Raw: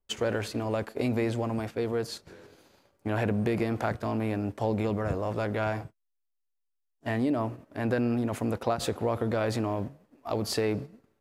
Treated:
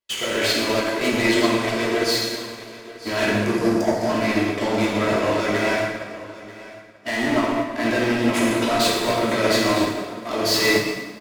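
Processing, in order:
meter weighting curve D
time-frequency box erased 0:03.41–0:04.09, 940–4,600 Hz
low-shelf EQ 100 Hz −8.5 dB
notch filter 780 Hz, Q 14
comb filter 3.1 ms, depth 38%
in parallel at +3 dB: brickwall limiter −20 dBFS, peak gain reduction 9 dB
on the sum: hollow resonant body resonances 1,100/2,000 Hz, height 7 dB, ringing for 25 ms
hard clipping −21 dBFS, distortion −9 dB
repeating echo 939 ms, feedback 25%, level −12 dB
dense smooth reverb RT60 2.1 s, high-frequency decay 0.75×, DRR −5.5 dB
expander for the loud parts 1.5 to 1, over −41 dBFS

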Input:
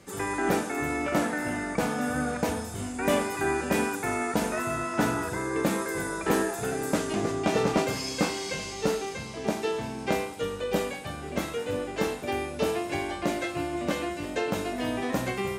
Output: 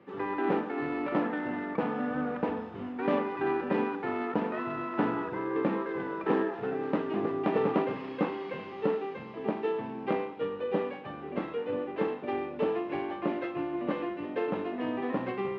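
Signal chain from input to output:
stylus tracing distortion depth 0.23 ms
loudspeaker in its box 210–2,400 Hz, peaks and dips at 660 Hz −7 dB, 1,500 Hz −7 dB, 2,200 Hz −7 dB

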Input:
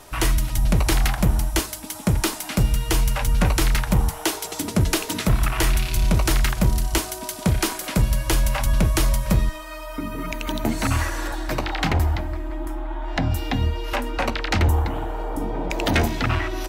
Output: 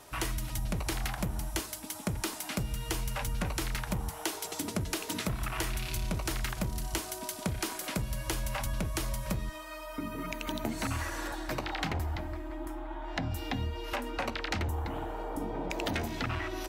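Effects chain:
high-pass filter 68 Hz 6 dB per octave
downward compressor, threshold −22 dBFS, peak gain reduction 7.5 dB
level −7 dB

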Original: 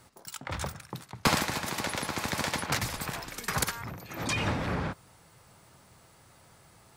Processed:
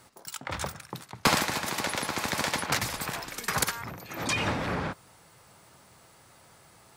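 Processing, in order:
low-shelf EQ 160 Hz −7 dB
level +2.5 dB

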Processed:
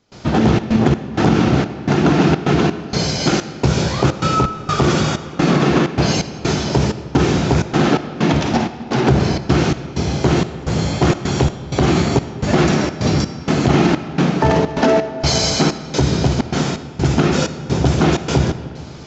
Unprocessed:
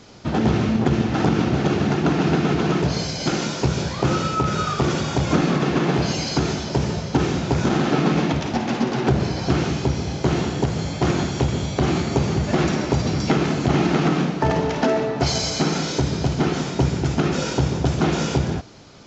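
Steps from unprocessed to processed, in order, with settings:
in parallel at −1 dB: brickwall limiter −12.5 dBFS, peak gain reduction 7 dB
on the sum: gate pattern ".xxxx.xx..xxxx." 128 BPM −24 dB
convolution reverb RT60 2.3 s, pre-delay 15 ms, DRR 11.5 dB
level +1 dB

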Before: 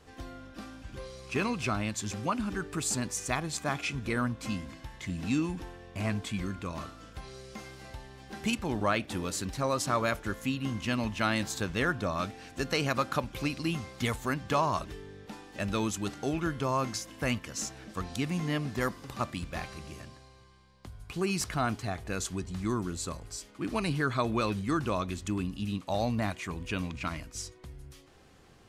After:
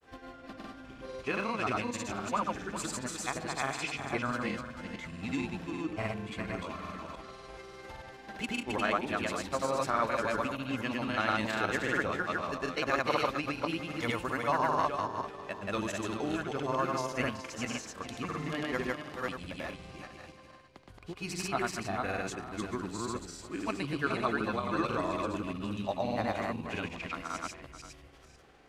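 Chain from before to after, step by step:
feedback delay that plays each chunk backwards 216 ms, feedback 46%, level −2 dB
granular cloud, pitch spread up and down by 0 semitones
bass and treble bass −9 dB, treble −8 dB

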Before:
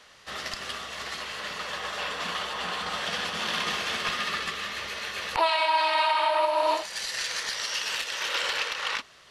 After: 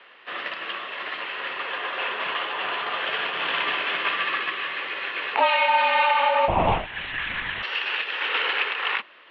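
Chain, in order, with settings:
high-shelf EQ 2,300 Hz +8 dB
single-sideband voice off tune −54 Hz 300–3,000 Hz
0:06.48–0:07.63: linear-prediction vocoder at 8 kHz whisper
level +2.5 dB

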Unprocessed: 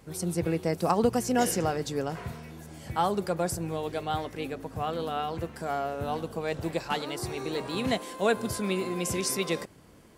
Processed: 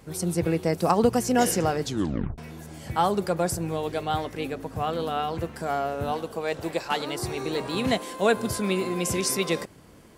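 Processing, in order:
0:01.85: tape stop 0.53 s
0:06.12–0:07.00: bass and treble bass −8 dB, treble 0 dB
level +3.5 dB

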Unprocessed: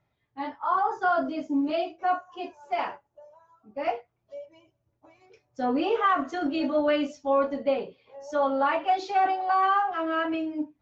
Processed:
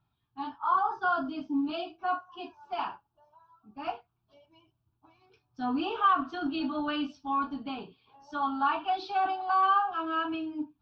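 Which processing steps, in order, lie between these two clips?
phaser with its sweep stopped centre 2,000 Hz, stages 6

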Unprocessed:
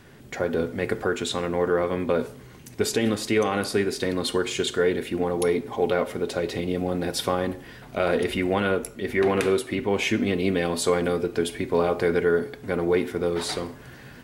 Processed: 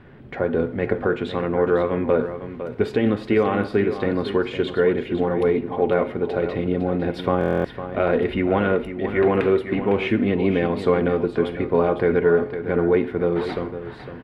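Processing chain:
high-frequency loss of the air 470 metres
single-tap delay 506 ms −10.5 dB
buffer that repeats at 0:07.39, samples 1,024, times 10
level +4.5 dB

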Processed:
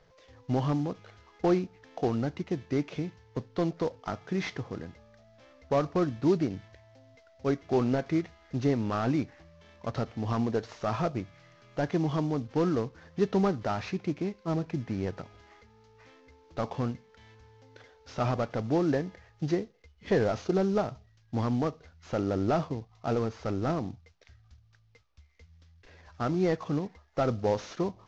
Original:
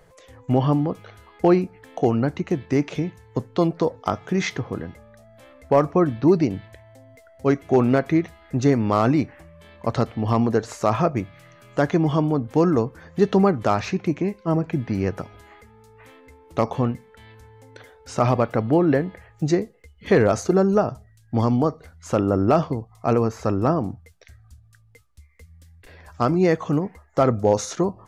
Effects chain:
variable-slope delta modulation 32 kbit/s
level −8 dB

